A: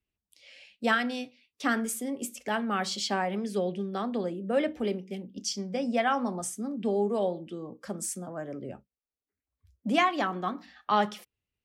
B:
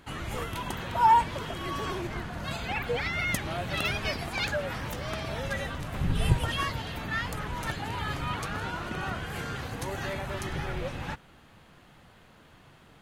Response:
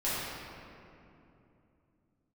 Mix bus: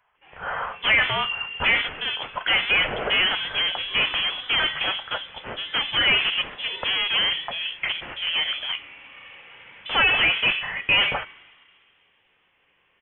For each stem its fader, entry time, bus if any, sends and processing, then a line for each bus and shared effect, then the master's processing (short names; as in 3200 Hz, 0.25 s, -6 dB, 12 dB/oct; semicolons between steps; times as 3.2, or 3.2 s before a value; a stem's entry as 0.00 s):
+1.0 dB, 0.00 s, no send, notch 3400 Hz, Q 7.2; de-hum 359.4 Hz, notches 7; overdrive pedal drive 32 dB, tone 2400 Hz, clips at -12 dBFS
-14.5 dB, 0.15 s, send -3.5 dB, auto duck -10 dB, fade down 0.30 s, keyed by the first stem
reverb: on, RT60 2.8 s, pre-delay 5 ms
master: HPF 610 Hz 12 dB/oct; tilt +2 dB/oct; inverted band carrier 3700 Hz